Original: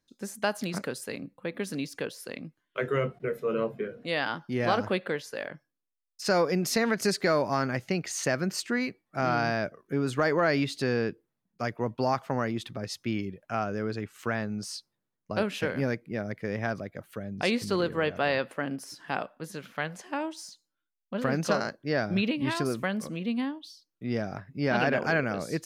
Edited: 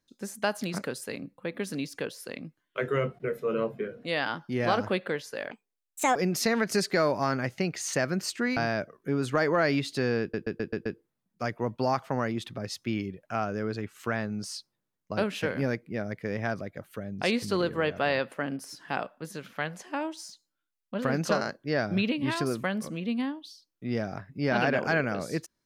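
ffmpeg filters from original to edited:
-filter_complex "[0:a]asplit=9[a][b][c][d][e][f][g][h][i];[a]atrim=end=5.514[j];[b]atrim=start=5.51:end=6.46,asetpts=PTS-STARTPTS,asetrate=64827,aresample=44100[k];[c]atrim=start=6.456:end=8.872[l];[d]atrim=start=9.408:end=11.182[m];[e]atrim=start=11.048:end=11.182[n];[f]atrim=start=11.048:end=11.182[o];[g]atrim=start=11.048:end=11.182[p];[h]atrim=start=11.048:end=11.182[q];[i]atrim=start=11.048[r];[j][k]acrossfade=d=0.004:c1=hsin:c2=hsin[s];[s][l]acrossfade=d=0.004:c1=hsin:c2=hsin[t];[t][m]acrossfade=d=0.004:c1=hsin:c2=hsin[u];[u][n]acrossfade=d=0.004:c1=hsin:c2=hsin[v];[v][o]acrossfade=d=0.004:c1=hsin:c2=hsin[w];[w][p]acrossfade=d=0.004:c1=hsin:c2=hsin[x];[x][q]acrossfade=d=0.004:c1=hsin:c2=hsin[y];[y][r]acrossfade=d=0.004:c1=hsin:c2=hsin"

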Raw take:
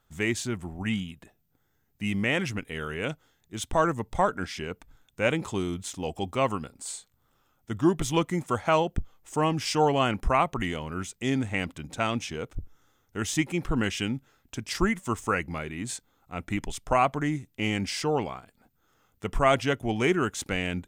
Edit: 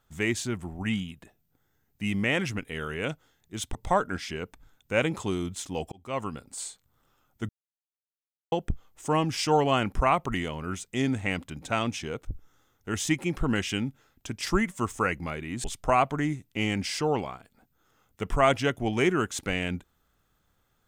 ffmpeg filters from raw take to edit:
-filter_complex "[0:a]asplit=6[a][b][c][d][e][f];[a]atrim=end=3.752[g];[b]atrim=start=4.028:end=6.2,asetpts=PTS-STARTPTS,afade=t=out:st=2.168:d=0.004:c=hsin[h];[c]atrim=start=6.2:end=7.77,asetpts=PTS-STARTPTS,afade=t=in:d=0.49,afade=t=out:st=1.566:d=0.004:c=hsin[i];[d]atrim=start=7.77:end=8.8,asetpts=PTS-STARTPTS,volume=0[j];[e]atrim=start=8.8:end=15.922,asetpts=PTS-STARTPTS,afade=t=in:d=0.004:c=hsin[k];[f]atrim=start=16.668[l];[h][i][j][k]concat=n=4:v=0:a=1[m];[g][m]acrossfade=d=0.004:c1=hsin:c2=hsin[n];[n][l]acrossfade=d=0.004:c1=hsin:c2=hsin"

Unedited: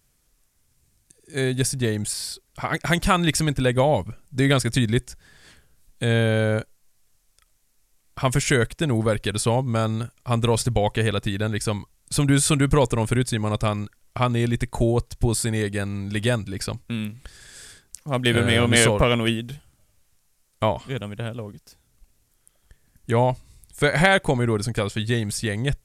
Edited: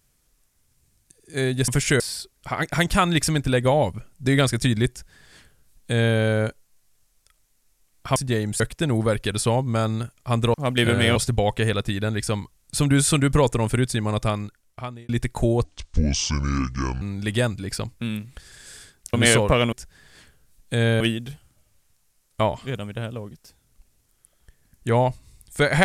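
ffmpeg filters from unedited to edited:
-filter_complex "[0:a]asplit=13[a][b][c][d][e][f][g][h][i][j][k][l][m];[a]atrim=end=1.682[n];[b]atrim=start=8.278:end=8.602[o];[c]atrim=start=2.118:end=8.282[p];[d]atrim=start=1.678:end=2.122[q];[e]atrim=start=8.598:end=10.542[r];[f]atrim=start=18.018:end=18.642[s];[g]atrim=start=10.538:end=14.47,asetpts=PTS-STARTPTS,afade=t=out:st=3.082:d=0.85[t];[h]atrim=start=14.47:end=15.024,asetpts=PTS-STARTPTS,afade=t=in:d=0.004:c=hsin[u];[i]atrim=start=15.02:end=15.9,asetpts=PTS-STARTPTS,asetrate=28224,aresample=44100[v];[j]atrim=start=15.896:end=18.022[w];[k]atrim=start=18.638:end=19.232[x];[l]atrim=start=5.018:end=6.302[y];[m]atrim=start=19.228[z];[n][o]acrossfade=d=0.004:c1=hsin:c2=hsin[aa];[aa][p]acrossfade=d=0.004:c1=hsin:c2=hsin[ab];[ab][q]acrossfade=d=0.004:c1=hsin:c2=hsin[ac];[ac][r]acrossfade=d=0.004:c1=hsin:c2=hsin[ad];[ad][s]acrossfade=d=0.004:c1=hsin:c2=hsin[ae];[t][u]concat=n=2:v=0:a=1[af];[ae][af]acrossfade=d=0.004:c1=hsin:c2=hsin[ag];[ag][v]acrossfade=d=0.004:c1=hsin:c2=hsin[ah];[ah][w]acrossfade=d=0.004:c1=hsin:c2=hsin[ai];[ai][x]acrossfade=d=0.004:c1=hsin:c2=hsin[aj];[aj][y]acrossfade=d=0.004:c1=hsin:c2=hsin[ak];[ak][z]acrossfade=d=0.004:c1=hsin:c2=hsin"

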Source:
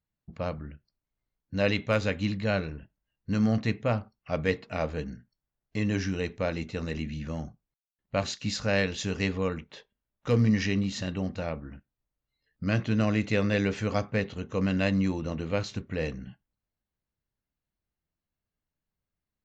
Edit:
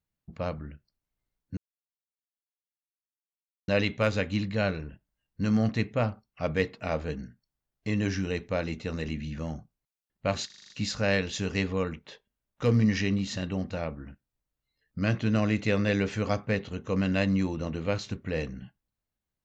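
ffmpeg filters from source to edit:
-filter_complex "[0:a]asplit=8[a][b][c][d][e][f][g][h];[a]atrim=end=1.57,asetpts=PTS-STARTPTS,afade=t=out:st=1.566:d=0.004:c=hsin,apad=pad_dur=2.11[i];[b]atrim=start=1.57:end=8.392,asetpts=PTS-STARTPTS,afade=t=in:d=0.004:c=hsin[j];[c]atrim=start=8.348:end=8.392[k];[d]atrim=start=8.348:end=8.392[l];[e]atrim=start=8.348:end=8.392[m];[f]atrim=start=8.348:end=8.392[n];[g]atrim=start=8.348:end=8.392[o];[h]atrim=start=8.348[p];[i][j]concat=n=2:v=0:a=1[q];[q][k]acrossfade=d=0.004:c1=hsin:c2=hsin[r];[r][l]acrossfade=d=0.004:c1=hsin:c2=hsin[s];[s][m]acrossfade=d=0.004:c1=hsin:c2=hsin[t];[t][n]acrossfade=d=0.004:c1=hsin:c2=hsin[u];[u][o]acrossfade=d=0.004:c1=hsin:c2=hsin[v];[v][p]acrossfade=d=0.004:c1=hsin:c2=hsin"

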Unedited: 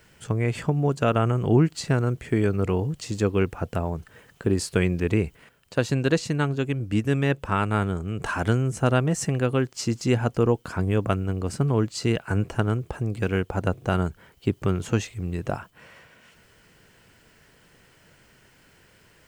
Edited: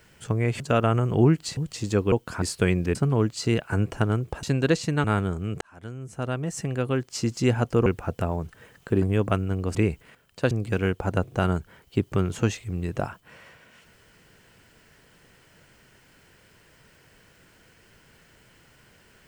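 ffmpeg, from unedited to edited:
-filter_complex "[0:a]asplit=13[a][b][c][d][e][f][g][h][i][j][k][l][m];[a]atrim=end=0.602[n];[b]atrim=start=0.918:end=1.892[o];[c]atrim=start=2.848:end=3.402[p];[d]atrim=start=10.498:end=10.802[q];[e]atrim=start=4.558:end=5.092[r];[f]atrim=start=11.528:end=13.012[s];[g]atrim=start=5.848:end=6.462[t];[h]atrim=start=7.678:end=8.25,asetpts=PTS-STARTPTS,afade=t=out:st=0.568:d=0.004:c=hsin[u];[i]atrim=start=8.25:end=10.502,asetpts=PTS-STARTPTS,afade=t=in:d=1.74[v];[j]atrim=start=3.398:end=4.562[w];[k]atrim=start=10.798:end=11.532[x];[l]atrim=start=5.088:end=5.852[y];[m]atrim=start=13.008[z];[n][o]acrossfade=d=0.004:c1=hsin:c2=hsin[aa];[aa][p]acrossfade=d=0.004:c1=hsin:c2=hsin[ab];[ab][q]acrossfade=d=0.004:c1=hsin:c2=hsin[ac];[ac][r]acrossfade=d=0.004:c1=hsin:c2=hsin[ad];[ad][s]acrossfade=d=0.004:c1=hsin:c2=hsin[ae];[ae][t]acrossfade=d=0.004:c1=hsin:c2=hsin[af];[u][v]concat=n=2:v=0:a=1[ag];[af][ag]acrossfade=d=0.004:c1=hsin:c2=hsin[ah];[ah][w]acrossfade=d=0.004:c1=hsin:c2=hsin[ai];[ai][x]acrossfade=d=0.004:c1=hsin:c2=hsin[aj];[aj][y]acrossfade=d=0.004:c1=hsin:c2=hsin[ak];[ak][z]acrossfade=d=0.004:c1=hsin:c2=hsin"

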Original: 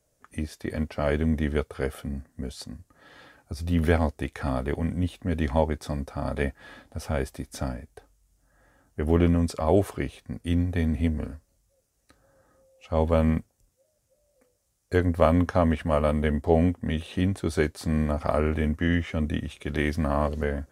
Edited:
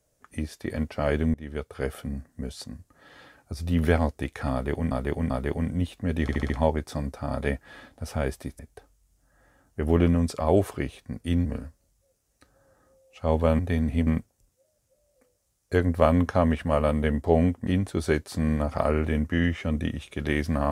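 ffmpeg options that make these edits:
-filter_complex "[0:a]asplit=13[a][b][c][d][e][f][g][h][i][j][k][l][m];[a]atrim=end=1.34,asetpts=PTS-STARTPTS,afade=t=out:st=1.336:d=0.004:c=hsin:silence=0.0794328[n];[b]atrim=start=1.34:end=4.912,asetpts=PTS-STARTPTS,afade=t=in:d=0.56:silence=0.0794328[o];[c]atrim=start=4.518:end=4.912[p];[d]atrim=start=4.518:end=5.512[q];[e]atrim=start=5.438:end=5.512[r];[f]atrim=start=5.438:end=5.512[s];[g]atrim=start=5.438:end=5.512[t];[h]atrim=start=5.438:end=7.532[u];[i]atrim=start=7.788:end=10.652[v];[j]atrim=start=11.128:end=13.272[w];[k]atrim=start=10.648:end=11.132[x];[l]atrim=start=13.268:end=16.872[y];[m]atrim=start=17.158[z];[n][o]concat=n=2:v=0:a=1[aa];[aa][p]acrossfade=d=0.004:c1=hsin:c2=hsin[ab];[ab][q]acrossfade=d=0.004:c1=hsin:c2=hsin[ac];[ac][r]acrossfade=d=0.004:c1=hsin:c2=hsin[ad];[ad][s]acrossfade=d=0.004:c1=hsin:c2=hsin[ae];[ae][t]acrossfade=d=0.004:c1=hsin:c2=hsin[af];[af][u]acrossfade=d=0.004:c1=hsin:c2=hsin[ag];[ag][v]acrossfade=d=0.004:c1=hsin:c2=hsin[ah];[ah][w]acrossfade=d=0.004:c1=hsin:c2=hsin[ai];[ai][x]acrossfade=d=0.004:c1=hsin:c2=hsin[aj];[aj][y]acrossfade=d=0.004:c1=hsin:c2=hsin[ak];[ak][z]acrossfade=d=0.004:c1=hsin:c2=hsin"

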